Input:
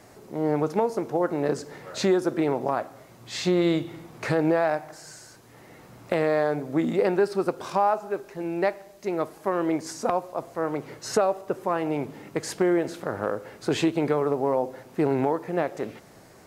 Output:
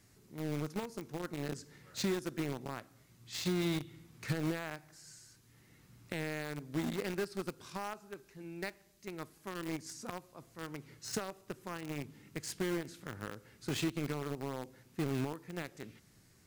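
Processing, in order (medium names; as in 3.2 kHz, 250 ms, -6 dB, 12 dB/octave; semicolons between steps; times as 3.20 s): amplifier tone stack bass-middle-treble 6-0-2; in parallel at -4.5 dB: bit crusher 7-bit; on the sum: trim +5.5 dB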